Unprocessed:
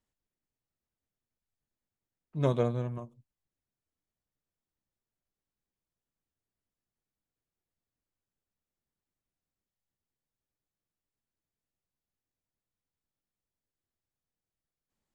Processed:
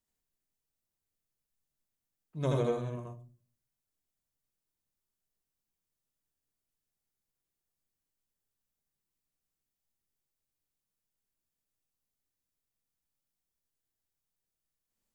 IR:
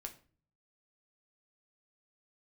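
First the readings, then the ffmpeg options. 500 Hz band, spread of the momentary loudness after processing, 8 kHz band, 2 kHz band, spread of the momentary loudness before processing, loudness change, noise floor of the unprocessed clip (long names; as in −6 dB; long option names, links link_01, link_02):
−1.5 dB, 18 LU, can't be measured, −0.5 dB, 15 LU, −2.5 dB, below −85 dBFS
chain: -filter_complex "[0:a]highshelf=frequency=4900:gain=10,asplit=2[link_01][link_02];[1:a]atrim=start_sample=2205,asetrate=48510,aresample=44100,adelay=80[link_03];[link_02][link_03]afir=irnorm=-1:irlink=0,volume=5dB[link_04];[link_01][link_04]amix=inputs=2:normalize=0,volume=-5.5dB"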